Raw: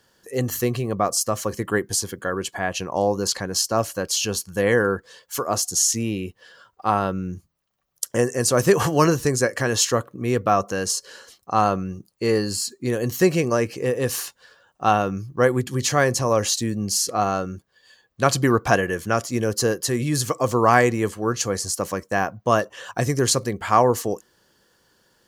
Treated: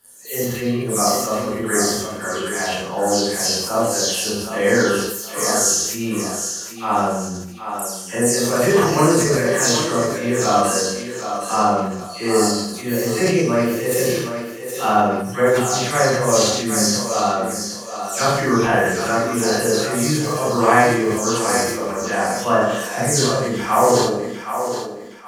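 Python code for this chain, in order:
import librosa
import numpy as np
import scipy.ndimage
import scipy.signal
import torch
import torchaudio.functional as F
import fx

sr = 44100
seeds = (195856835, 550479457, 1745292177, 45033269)

y = fx.spec_delay(x, sr, highs='early', ms=236)
y = fx.echo_thinned(y, sr, ms=770, feedback_pct=30, hz=230.0, wet_db=-8.0)
y = fx.rev_schroeder(y, sr, rt60_s=0.69, comb_ms=26, drr_db=-7.0)
y = fx.sustainer(y, sr, db_per_s=45.0)
y = y * 10.0 ** (-4.5 / 20.0)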